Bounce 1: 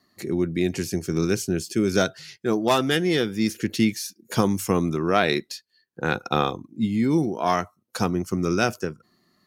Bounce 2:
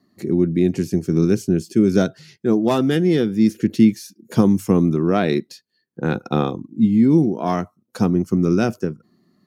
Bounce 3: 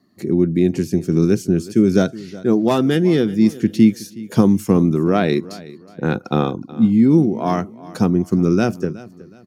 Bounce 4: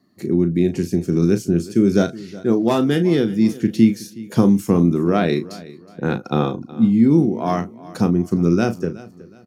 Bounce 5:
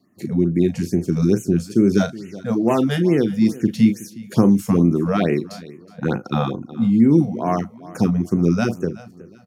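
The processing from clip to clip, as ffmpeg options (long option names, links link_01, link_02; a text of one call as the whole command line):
ffmpeg -i in.wav -af "equalizer=frequency=210:width=0.44:gain=14,volume=-5.5dB" out.wav
ffmpeg -i in.wav -af "aecho=1:1:369|738|1107:0.112|0.037|0.0122,volume=1.5dB" out.wav
ffmpeg -i in.wav -filter_complex "[0:a]asplit=2[link_01][link_02];[link_02]adelay=35,volume=-10dB[link_03];[link_01][link_03]amix=inputs=2:normalize=0,volume=-1.5dB" out.wav
ffmpeg -i in.wav -af "afftfilt=real='re*(1-between(b*sr/1024,300*pow(4400/300,0.5+0.5*sin(2*PI*2.3*pts/sr))/1.41,300*pow(4400/300,0.5+0.5*sin(2*PI*2.3*pts/sr))*1.41))':imag='im*(1-between(b*sr/1024,300*pow(4400/300,0.5+0.5*sin(2*PI*2.3*pts/sr))/1.41,300*pow(4400/300,0.5+0.5*sin(2*PI*2.3*pts/sr))*1.41))':win_size=1024:overlap=0.75" out.wav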